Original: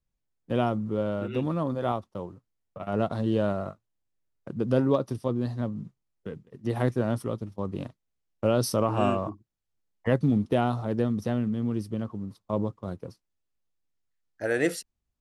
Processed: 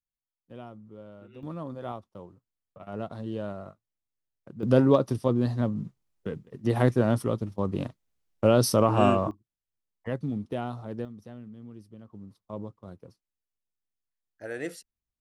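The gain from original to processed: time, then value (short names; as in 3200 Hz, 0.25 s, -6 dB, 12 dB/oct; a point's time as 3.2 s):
-18 dB
from 1.43 s -8.5 dB
from 4.63 s +3.5 dB
from 9.31 s -8 dB
from 11.05 s -16.5 dB
from 12.13 s -9.5 dB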